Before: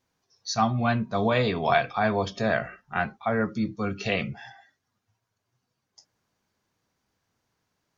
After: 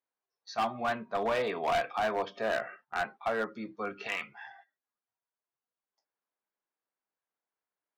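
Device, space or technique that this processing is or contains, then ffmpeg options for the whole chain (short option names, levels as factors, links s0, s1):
walkie-talkie: -filter_complex "[0:a]asettb=1/sr,asplit=3[s0][s1][s2];[s0]atrim=end=4.074[s3];[s1]atrim=start=4.07:end=4.47,asetpts=PTS-STARTPTS,afade=t=in:d=0.004:c=qsin,afade=t=out:st=0.396:d=0.004:c=qsin,lowshelf=f=750:t=q:w=3:g=-8[s4];[s2]atrim=start=4.466[s5];[s3][s4]acrossfade=d=0.004:c1=hsin:c2=qsin[s6];[s6][s5]acrossfade=d=0.004:c1=qsin:c2=hsin,highpass=430,lowpass=2400,asoftclip=type=hard:threshold=0.075,agate=range=0.224:threshold=0.00224:ratio=16:detection=peak,volume=0.794"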